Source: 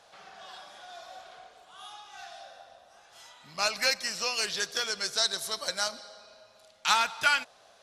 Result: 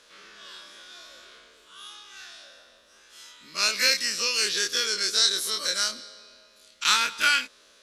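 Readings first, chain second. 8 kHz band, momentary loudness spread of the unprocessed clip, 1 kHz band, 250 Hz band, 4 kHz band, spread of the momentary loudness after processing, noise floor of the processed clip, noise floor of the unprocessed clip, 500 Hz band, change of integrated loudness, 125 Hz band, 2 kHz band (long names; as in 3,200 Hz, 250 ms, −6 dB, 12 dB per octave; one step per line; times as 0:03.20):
+6.5 dB, 21 LU, −0.5 dB, +3.5 dB, +6.5 dB, 22 LU, −57 dBFS, −59 dBFS, 0.0 dB, +5.0 dB, can't be measured, +3.5 dB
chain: every bin's largest magnitude spread in time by 60 ms
phaser with its sweep stopped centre 310 Hz, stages 4
level +2 dB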